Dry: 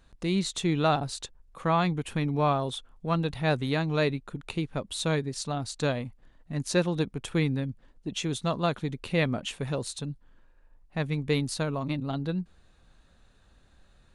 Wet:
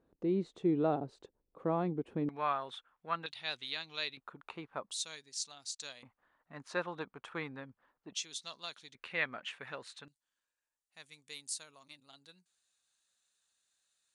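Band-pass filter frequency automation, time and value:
band-pass filter, Q 1.7
380 Hz
from 2.29 s 1.6 kHz
from 3.26 s 3.8 kHz
from 4.17 s 1.1 kHz
from 4.91 s 6.1 kHz
from 6.03 s 1.2 kHz
from 8.15 s 5.3 kHz
from 8.95 s 1.7 kHz
from 10.08 s 7.9 kHz

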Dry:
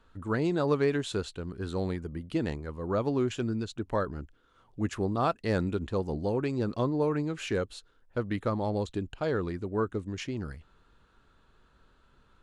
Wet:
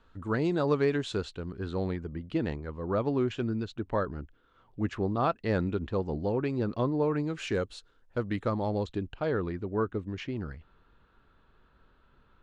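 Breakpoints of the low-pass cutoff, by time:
1.13 s 6.3 kHz
1.77 s 3.8 kHz
7.04 s 3.8 kHz
7.45 s 7.8 kHz
8.24 s 7.8 kHz
9.34 s 3.3 kHz

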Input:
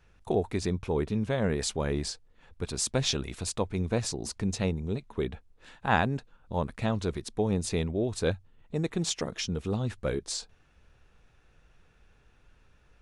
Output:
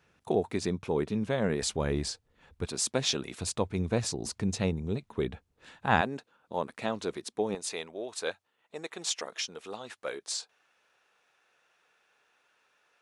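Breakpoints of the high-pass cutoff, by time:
140 Hz
from 1.62 s 49 Hz
from 2.67 s 190 Hz
from 3.39 s 75 Hz
from 6.01 s 290 Hz
from 7.55 s 630 Hz

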